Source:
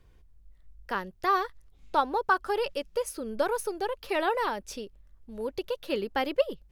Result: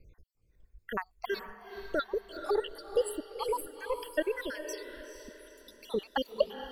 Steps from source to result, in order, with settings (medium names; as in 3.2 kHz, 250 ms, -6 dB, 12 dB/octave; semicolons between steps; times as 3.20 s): random holes in the spectrogram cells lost 75%; echo that smears into a reverb 469 ms, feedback 41%, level -9 dB; trim +2 dB